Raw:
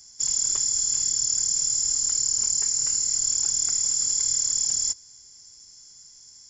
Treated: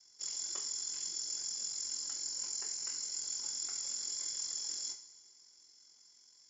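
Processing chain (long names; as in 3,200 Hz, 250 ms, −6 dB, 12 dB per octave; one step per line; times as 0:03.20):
ring modulation 22 Hz
three-way crossover with the lows and the highs turned down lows −20 dB, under 240 Hz, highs −22 dB, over 6,200 Hz
coupled-rooms reverb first 0.37 s, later 1.9 s, from −17 dB, DRR 1 dB
level −7.5 dB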